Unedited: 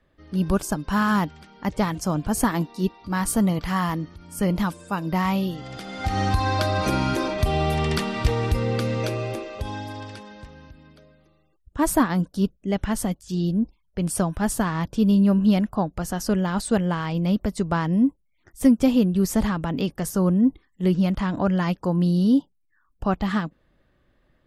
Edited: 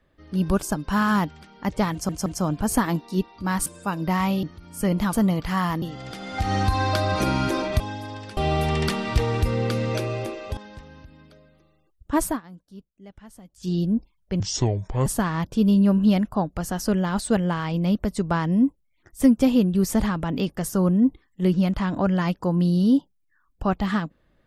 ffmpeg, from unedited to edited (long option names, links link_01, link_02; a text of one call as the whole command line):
ffmpeg -i in.wav -filter_complex "[0:a]asplit=14[link_01][link_02][link_03][link_04][link_05][link_06][link_07][link_08][link_09][link_10][link_11][link_12][link_13][link_14];[link_01]atrim=end=2.092[link_15];[link_02]atrim=start=1.918:end=2.092[link_16];[link_03]atrim=start=1.918:end=3.322[link_17];[link_04]atrim=start=4.708:end=5.482[link_18];[link_05]atrim=start=4.008:end=4.712[link_19];[link_06]atrim=start=3.318:end=4.012[link_20];[link_07]atrim=start=5.478:end=7.462[link_21];[link_08]atrim=start=9.658:end=10.232[link_22];[link_09]atrim=start=7.458:end=9.662[link_23];[link_10]atrim=start=10.228:end=12.07,asetpts=PTS-STARTPTS,afade=type=out:start_time=1.622:duration=0.22:silence=0.0891251[link_24];[link_11]atrim=start=12.07:end=13.13,asetpts=PTS-STARTPTS,volume=-21dB[link_25];[link_12]atrim=start=13.13:end=14.064,asetpts=PTS-STARTPTS,afade=type=in:duration=0.22:silence=0.0891251[link_26];[link_13]atrim=start=14.06:end=14.47,asetpts=PTS-STARTPTS,asetrate=27342,aresample=44100[link_27];[link_14]atrim=start=14.466[link_28];[link_15][link_16]acrossfade=duration=0.004:curve1=hsin:curve2=hsin[link_29];[link_29][link_17]acrossfade=duration=0.004:curve1=hsin:curve2=hsin[link_30];[link_30][link_18]acrossfade=duration=0.004:curve1=hsin:curve2=hsin[link_31];[link_31][link_19]acrossfade=duration=0.004:curve1=hsin:curve2=hsin[link_32];[link_32][link_20]acrossfade=duration=0.004:curve1=hsin:curve2=hsin[link_33];[link_33][link_21]acrossfade=duration=0.004:curve1=hsin:curve2=hsin[link_34];[link_34][link_22]acrossfade=duration=0.004:curve1=hsin:curve2=hsin[link_35];[link_35][link_23]acrossfade=duration=0.004:curve1=hsin:curve2=hsin[link_36];[link_24][link_25][link_26]concat=n=3:v=0:a=1[link_37];[link_36][link_37]acrossfade=duration=0.004:curve1=hsin:curve2=hsin[link_38];[link_38][link_27]acrossfade=duration=0.004:curve1=hsin:curve2=hsin[link_39];[link_39][link_28]acrossfade=duration=0.004:curve1=hsin:curve2=hsin" out.wav